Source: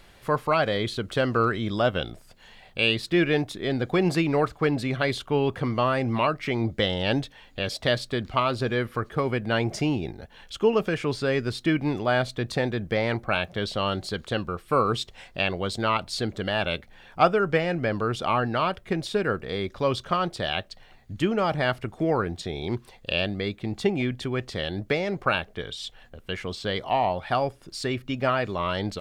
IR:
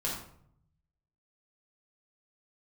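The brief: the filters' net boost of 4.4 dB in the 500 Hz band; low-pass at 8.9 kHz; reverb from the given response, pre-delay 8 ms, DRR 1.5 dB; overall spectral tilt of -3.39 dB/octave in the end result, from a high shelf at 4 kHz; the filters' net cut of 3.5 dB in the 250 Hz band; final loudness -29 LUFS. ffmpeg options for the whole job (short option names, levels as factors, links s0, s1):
-filter_complex "[0:a]lowpass=8900,equalizer=f=250:t=o:g=-8.5,equalizer=f=500:t=o:g=7.5,highshelf=f=4000:g=9,asplit=2[s0][s1];[1:a]atrim=start_sample=2205,adelay=8[s2];[s1][s2]afir=irnorm=-1:irlink=0,volume=0.473[s3];[s0][s3]amix=inputs=2:normalize=0,volume=0.398"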